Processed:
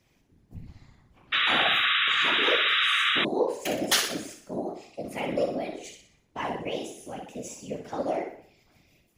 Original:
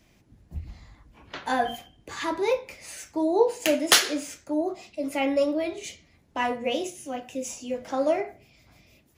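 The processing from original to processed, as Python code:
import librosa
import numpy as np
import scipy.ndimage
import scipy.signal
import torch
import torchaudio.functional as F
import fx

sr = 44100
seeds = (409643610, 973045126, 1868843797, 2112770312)

y = fx.room_flutter(x, sr, wall_m=10.4, rt60_s=0.54)
y = fx.whisperise(y, sr, seeds[0])
y = fx.spec_paint(y, sr, seeds[1], shape='noise', start_s=1.32, length_s=1.93, low_hz=1100.0, high_hz=3900.0, level_db=-18.0)
y = y * librosa.db_to_amplitude(-6.0)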